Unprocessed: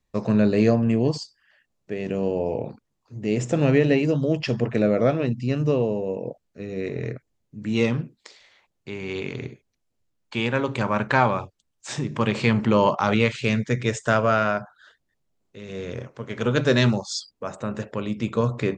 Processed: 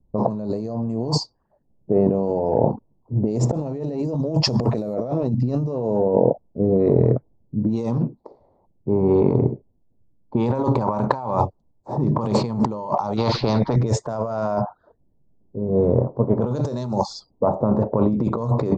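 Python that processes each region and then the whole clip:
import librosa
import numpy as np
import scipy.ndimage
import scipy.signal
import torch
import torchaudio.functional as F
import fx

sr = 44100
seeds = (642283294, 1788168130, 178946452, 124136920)

y = fx.chain(x, sr, fx.high_shelf(hz=2400.0, db=7.5),
    fx.quant_companded(bits=8), at=(4.41, 4.94))
y = fx.chain(y, sr, fx.steep_lowpass(hz=4400.0, slope=36),
    fx.spectral_comp(ratio=2.0), at=(13.17, 13.76))
y = fx.env_lowpass(y, sr, base_hz=320.0, full_db=-17.0)
y = fx.curve_eq(y, sr, hz=(460.0, 940.0, 1600.0, 3000.0, 4400.0), db=(0, 6, -19, -22, -4))
y = fx.over_compress(y, sr, threshold_db=-30.0, ratio=-1.0)
y = y * librosa.db_to_amplitude(8.5)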